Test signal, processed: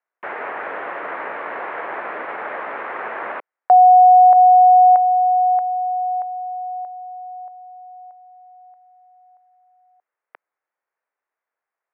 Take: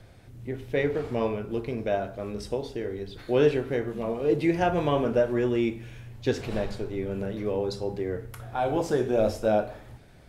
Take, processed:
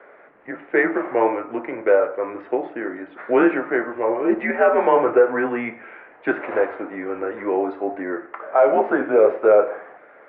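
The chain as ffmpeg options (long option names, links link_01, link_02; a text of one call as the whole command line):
ffmpeg -i in.wav -af "highpass=frequency=590:width_type=q:width=0.5412,highpass=frequency=590:width_type=q:width=1.307,lowpass=frequency=2100:width_type=q:width=0.5176,lowpass=frequency=2100:width_type=q:width=0.7071,lowpass=frequency=2100:width_type=q:width=1.932,afreqshift=-110,alimiter=level_in=19.5dB:limit=-1dB:release=50:level=0:latency=1,volume=-4.5dB" out.wav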